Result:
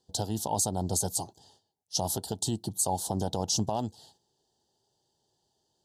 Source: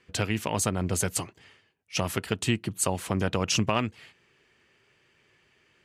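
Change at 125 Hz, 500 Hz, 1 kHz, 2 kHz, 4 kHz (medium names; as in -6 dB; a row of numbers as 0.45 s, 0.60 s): -4.0 dB, -3.5 dB, -0.5 dB, -24.5 dB, -2.5 dB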